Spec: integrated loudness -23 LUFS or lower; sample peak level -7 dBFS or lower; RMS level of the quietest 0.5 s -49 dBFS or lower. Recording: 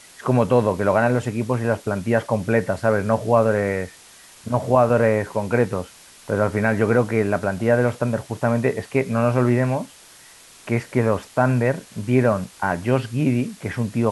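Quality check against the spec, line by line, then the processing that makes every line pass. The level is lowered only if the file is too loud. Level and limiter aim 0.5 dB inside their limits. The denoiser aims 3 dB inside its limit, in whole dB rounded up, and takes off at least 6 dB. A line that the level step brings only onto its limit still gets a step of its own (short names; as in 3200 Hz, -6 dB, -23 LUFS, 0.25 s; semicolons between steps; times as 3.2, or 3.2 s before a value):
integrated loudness -21.0 LUFS: fail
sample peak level -4.5 dBFS: fail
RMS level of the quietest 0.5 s -47 dBFS: fail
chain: gain -2.5 dB; limiter -7.5 dBFS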